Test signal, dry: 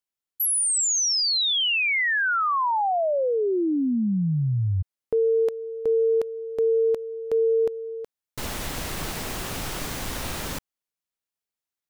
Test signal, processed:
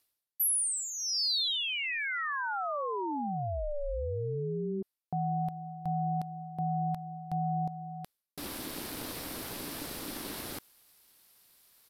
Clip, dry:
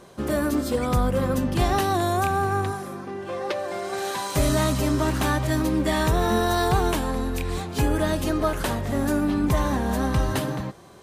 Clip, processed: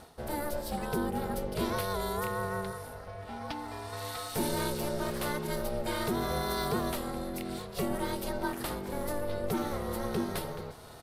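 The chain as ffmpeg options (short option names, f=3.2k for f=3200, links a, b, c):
-af "areverse,acompressor=mode=upward:threshold=-26dB:ratio=2.5:attack=1.4:release=296:knee=2.83:detection=peak,areverse,aexciter=amount=1:drive=7.7:freq=3.8k,aeval=exprs='val(0)*sin(2*PI*290*n/s)':c=same,aresample=32000,aresample=44100,volume=-7.5dB"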